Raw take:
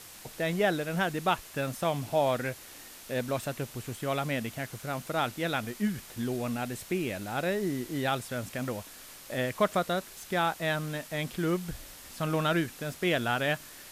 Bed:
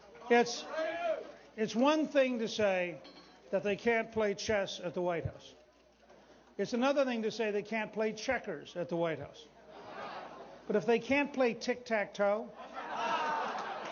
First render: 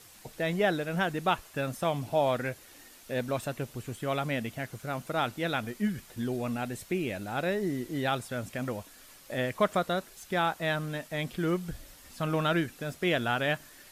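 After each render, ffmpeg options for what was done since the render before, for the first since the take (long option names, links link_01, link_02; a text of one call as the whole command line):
ffmpeg -i in.wav -af "afftdn=noise_reduction=7:noise_floor=-49" out.wav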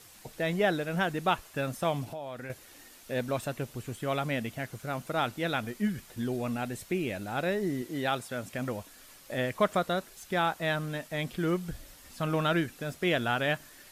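ffmpeg -i in.wav -filter_complex "[0:a]asettb=1/sr,asplit=3[link_01][link_02][link_03];[link_01]atrim=end=2.044[link_04];[link_02]atrim=start=2.04:end=2.5,asetpts=PTS-STARTPTS,afade=type=in:duration=0.004:curve=qsin,afade=type=out:start_time=0.456:duration=0.004:curve=qsin,acompressor=threshold=-38dB:ratio=4:attack=3.2:release=140:knee=1:detection=peak[link_05];[link_03]atrim=start=2.496[link_06];[link_04][link_05]acrossfade=duration=0.004:curve1=hsin:curve2=qsin[link_07];[link_07][link_06]acrossfade=duration=0.004:curve1=qsin:curve2=hsin,asettb=1/sr,asplit=3[link_08][link_09][link_10];[link_08]atrim=end=7.824[link_11];[link_09]atrim=start=7.82:end=8.52,asetpts=PTS-STARTPTS,afade=type=in:duration=0.004:curve=qsin,afade=type=out:start_time=0.696:duration=0.004:curve=qsin,highpass=frequency=160:poles=1[link_12];[link_10]atrim=start=8.516[link_13];[link_11][link_12]acrossfade=duration=0.004:curve1=hsin:curve2=qsin[link_14];[link_14][link_13]acrossfade=duration=0.004:curve1=qsin:curve2=hsin" out.wav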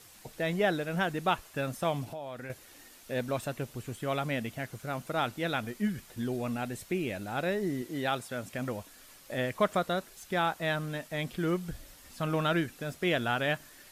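ffmpeg -i in.wav -af "volume=-1dB" out.wav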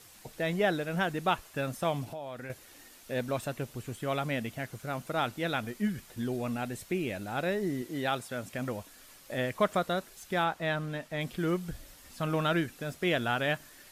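ffmpeg -i in.wav -filter_complex "[0:a]asettb=1/sr,asplit=3[link_01][link_02][link_03];[link_01]atrim=end=10.444[link_04];[link_02]atrim=start=10.44:end=11.21,asetpts=PTS-STARTPTS,afade=type=in:duration=0.004:curve=qsin,afade=type=out:start_time=0.766:duration=0.004:curve=qsin,highshelf=frequency=6200:gain=-9[link_05];[link_03]atrim=start=11.206[link_06];[link_04][link_05]acrossfade=duration=0.004:curve1=hsin:curve2=qsin[link_07];[link_07][link_06]acrossfade=duration=0.004:curve1=qsin:curve2=hsin" out.wav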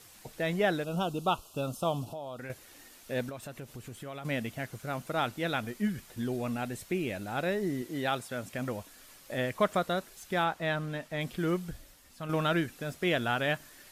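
ffmpeg -i in.wav -filter_complex "[0:a]asettb=1/sr,asplit=3[link_01][link_02][link_03];[link_01]atrim=end=0.844[link_04];[link_02]atrim=start=0.84:end=2.39,asetpts=PTS-STARTPTS,afade=type=in:duration=0.004:curve=qsin,afade=type=out:start_time=1.546:duration=0.004:curve=qsin,asuperstop=centerf=1900:order=8:qfactor=1.5[link_05];[link_03]atrim=start=2.386[link_06];[link_04][link_05]acrossfade=duration=0.004:curve1=hsin:curve2=qsin[link_07];[link_07][link_06]acrossfade=duration=0.004:curve1=qsin:curve2=hsin,asettb=1/sr,asplit=3[link_08][link_09][link_10];[link_08]atrim=end=3.294[link_11];[link_09]atrim=start=3.29:end=4.25,asetpts=PTS-STARTPTS,afade=type=in:duration=0.004:curve=qsin,afade=type=out:start_time=0.956:duration=0.004:curve=qsin,acompressor=threshold=-41dB:ratio=3:attack=3.2:release=140:knee=1:detection=peak[link_12];[link_10]atrim=start=4.246[link_13];[link_11][link_12]acrossfade=duration=0.004:curve1=hsin:curve2=qsin[link_14];[link_14][link_13]acrossfade=duration=0.004:curve1=qsin:curve2=hsin,asplit=2[link_15][link_16];[link_15]atrim=end=12.29,asetpts=PTS-STARTPTS,afade=type=out:start_time=11.59:duration=0.7:curve=qua:silence=0.446684[link_17];[link_16]atrim=start=12.29,asetpts=PTS-STARTPTS,afade=type=in:duration=0.004:curve=hsin:silence=0.446684[link_18];[link_17][link_18]concat=n=2:v=0:a=1" out.wav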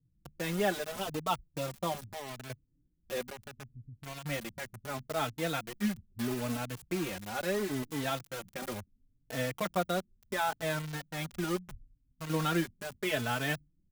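ffmpeg -i in.wav -filter_complex "[0:a]acrossover=split=200[link_01][link_02];[link_02]acrusher=bits=5:mix=0:aa=0.000001[link_03];[link_01][link_03]amix=inputs=2:normalize=0,asplit=2[link_04][link_05];[link_05]adelay=4,afreqshift=0.74[link_06];[link_04][link_06]amix=inputs=2:normalize=1" out.wav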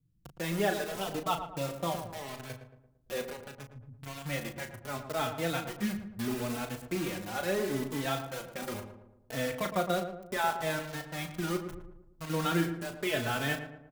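ffmpeg -i in.wav -filter_complex "[0:a]asplit=2[link_01][link_02];[link_02]adelay=36,volume=-8dB[link_03];[link_01][link_03]amix=inputs=2:normalize=0,asplit=2[link_04][link_05];[link_05]adelay=113,lowpass=frequency=1400:poles=1,volume=-8dB,asplit=2[link_06][link_07];[link_07]adelay=113,lowpass=frequency=1400:poles=1,volume=0.49,asplit=2[link_08][link_09];[link_09]adelay=113,lowpass=frequency=1400:poles=1,volume=0.49,asplit=2[link_10][link_11];[link_11]adelay=113,lowpass=frequency=1400:poles=1,volume=0.49,asplit=2[link_12][link_13];[link_13]adelay=113,lowpass=frequency=1400:poles=1,volume=0.49,asplit=2[link_14][link_15];[link_15]adelay=113,lowpass=frequency=1400:poles=1,volume=0.49[link_16];[link_04][link_06][link_08][link_10][link_12][link_14][link_16]amix=inputs=7:normalize=0" out.wav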